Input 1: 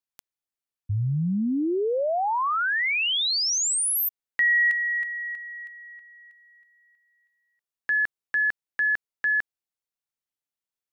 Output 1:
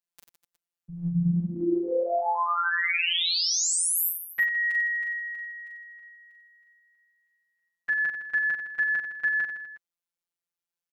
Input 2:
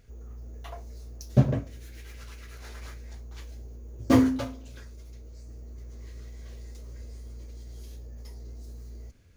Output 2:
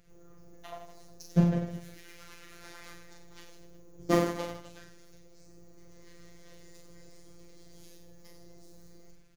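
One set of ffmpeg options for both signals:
ffmpeg -i in.wav -af "aecho=1:1:40|92|159.6|247.5|361.7:0.631|0.398|0.251|0.158|0.1,afftfilt=real='hypot(re,im)*cos(PI*b)':imag='0':win_size=1024:overlap=0.75" out.wav

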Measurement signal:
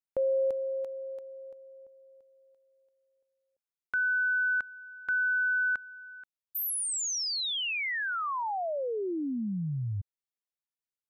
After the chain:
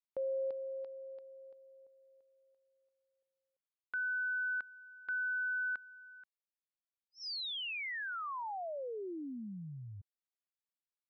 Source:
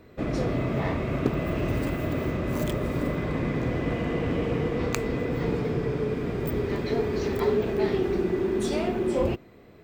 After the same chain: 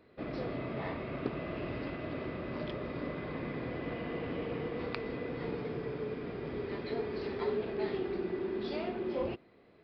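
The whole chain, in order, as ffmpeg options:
ffmpeg -i in.wav -af "lowshelf=frequency=150:gain=-10.5,aresample=11025,aresample=44100,volume=-8dB" out.wav

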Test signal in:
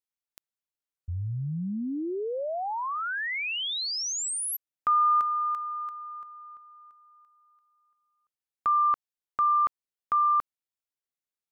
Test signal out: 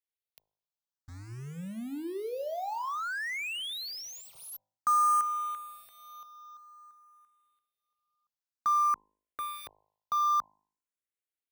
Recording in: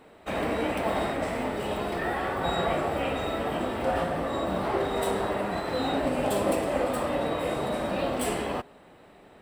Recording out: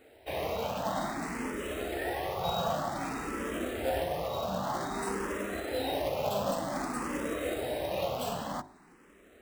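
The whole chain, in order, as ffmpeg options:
ffmpeg -i in.wav -filter_complex "[0:a]acrusher=bits=3:mode=log:mix=0:aa=0.000001,bandreject=frequency=52.09:width_type=h:width=4,bandreject=frequency=104.18:width_type=h:width=4,bandreject=frequency=156.27:width_type=h:width=4,bandreject=frequency=208.36:width_type=h:width=4,bandreject=frequency=260.45:width_type=h:width=4,bandreject=frequency=312.54:width_type=h:width=4,bandreject=frequency=364.63:width_type=h:width=4,bandreject=frequency=416.72:width_type=h:width=4,bandreject=frequency=468.81:width_type=h:width=4,bandreject=frequency=520.9:width_type=h:width=4,bandreject=frequency=572.99:width_type=h:width=4,bandreject=frequency=625.08:width_type=h:width=4,bandreject=frequency=677.17:width_type=h:width=4,bandreject=frequency=729.26:width_type=h:width=4,bandreject=frequency=781.35:width_type=h:width=4,bandreject=frequency=833.44:width_type=h:width=4,bandreject=frequency=885.53:width_type=h:width=4,bandreject=frequency=937.62:width_type=h:width=4,bandreject=frequency=989.71:width_type=h:width=4,bandreject=frequency=1041.8:width_type=h:width=4,asplit=2[link_01][link_02];[link_02]afreqshift=0.53[link_03];[link_01][link_03]amix=inputs=2:normalize=1,volume=-2dB" out.wav

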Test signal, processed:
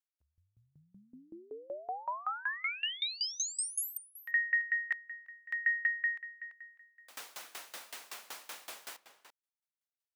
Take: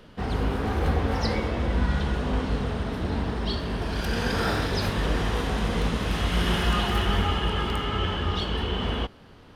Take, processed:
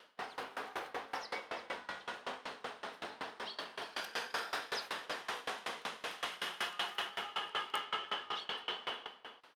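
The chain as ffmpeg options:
ffmpeg -i in.wav -filter_complex "[0:a]alimiter=limit=-16.5dB:level=0:latency=1:release=423,highpass=750,asplit=2[link_01][link_02];[link_02]adelay=338.2,volume=-10dB,highshelf=frequency=4000:gain=-7.61[link_03];[link_01][link_03]amix=inputs=2:normalize=0,aeval=exprs='val(0)*pow(10,-23*if(lt(mod(5.3*n/s,1),2*abs(5.3)/1000),1-mod(5.3*n/s,1)/(2*abs(5.3)/1000),(mod(5.3*n/s,1)-2*abs(5.3)/1000)/(1-2*abs(5.3)/1000))/20)':channel_layout=same" out.wav

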